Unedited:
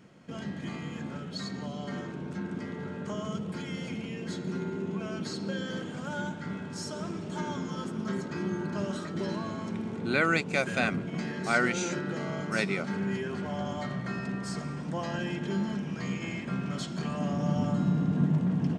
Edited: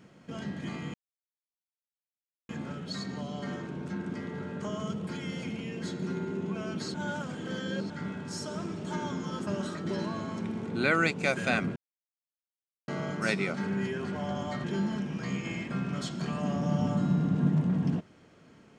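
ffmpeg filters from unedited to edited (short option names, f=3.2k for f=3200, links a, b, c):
-filter_complex "[0:a]asplit=8[a][b][c][d][e][f][g][h];[a]atrim=end=0.94,asetpts=PTS-STARTPTS,afade=t=out:st=0.936:d=0.004:c=hsin,apad=pad_dur=1.55[i];[b]atrim=start=0.94:end=5.392,asetpts=PTS-STARTPTS,afade=t=in:d=0.004:c=hsin[j];[c]atrim=start=5.388:end=6.352,asetpts=PTS-STARTPTS,areverse[k];[d]atrim=start=6.348:end=7.922[l];[e]atrim=start=8.768:end=11.06,asetpts=PTS-STARTPTS,afade=t=out:st=2.288:d=0.004:c=hsin[m];[f]atrim=start=11.06:end=12.18,asetpts=PTS-STARTPTS,volume=0[n];[g]atrim=start=12.18:end=13.942,asetpts=PTS-STARTPTS,afade=t=in:d=0.004:c=hsin[o];[h]atrim=start=15.408[p];[i][j]concat=n=2:v=0:a=1[q];[q][k]acrossfade=d=0.004:c1=hsin:c2=hsin[r];[r][l]acrossfade=d=0.004:c1=hsin:c2=hsin[s];[m][n][o]concat=n=3:v=0:a=1[t];[s][t]acrossfade=d=0.004:c1=hsin:c2=hsin[u];[u][p]acrossfade=d=0.004:c1=hsin:c2=hsin"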